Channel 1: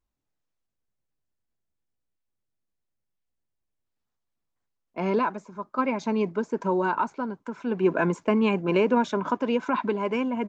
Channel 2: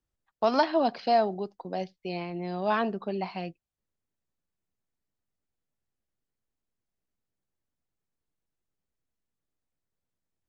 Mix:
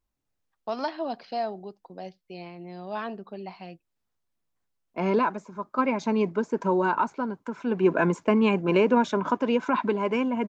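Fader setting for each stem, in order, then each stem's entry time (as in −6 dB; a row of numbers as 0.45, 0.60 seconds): +1.0, −6.5 decibels; 0.00, 0.25 seconds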